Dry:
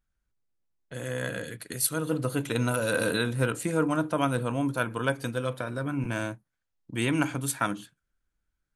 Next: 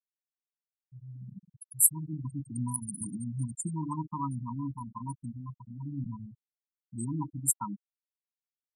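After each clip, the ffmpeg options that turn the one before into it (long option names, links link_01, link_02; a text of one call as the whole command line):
ffmpeg -i in.wav -af "firequalizer=gain_entry='entry(110,0);entry(180,6);entry(570,-25);entry(910,8);entry(1800,-25);entry(7100,12)':delay=0.05:min_phase=1,afftfilt=real='re*gte(hypot(re,im),0.126)':imag='im*gte(hypot(re,im),0.126)':win_size=1024:overlap=0.75,volume=-6dB" out.wav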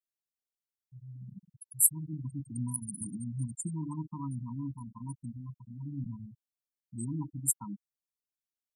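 ffmpeg -i in.wav -af "equalizer=frequency=1400:width=0.71:gain=-13,volume=-1dB" out.wav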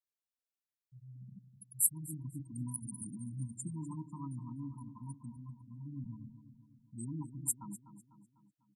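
ffmpeg -i in.wav -filter_complex "[0:a]asplit=2[link_01][link_02];[link_02]adelay=249,lowpass=frequency=3700:poles=1,volume=-11dB,asplit=2[link_03][link_04];[link_04]adelay=249,lowpass=frequency=3700:poles=1,volume=0.51,asplit=2[link_05][link_06];[link_06]adelay=249,lowpass=frequency=3700:poles=1,volume=0.51,asplit=2[link_07][link_08];[link_08]adelay=249,lowpass=frequency=3700:poles=1,volume=0.51,asplit=2[link_09][link_10];[link_10]adelay=249,lowpass=frequency=3700:poles=1,volume=0.51[link_11];[link_01][link_03][link_05][link_07][link_09][link_11]amix=inputs=6:normalize=0,volume=-5.5dB" out.wav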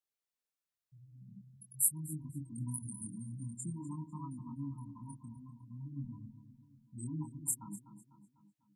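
ffmpeg -i in.wav -af "flanger=delay=19.5:depth=7.5:speed=0.47,volume=3dB" out.wav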